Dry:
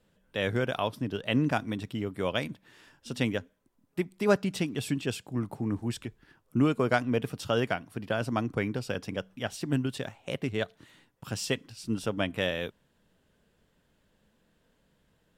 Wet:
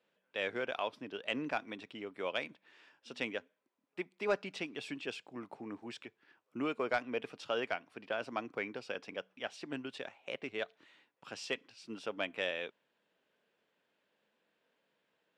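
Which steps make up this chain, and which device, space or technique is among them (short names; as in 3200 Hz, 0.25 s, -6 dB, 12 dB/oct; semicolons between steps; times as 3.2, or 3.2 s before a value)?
intercom (BPF 390–4600 Hz; bell 2400 Hz +5 dB 0.34 oct; soft clip -13.5 dBFS, distortion -22 dB); gain -5.5 dB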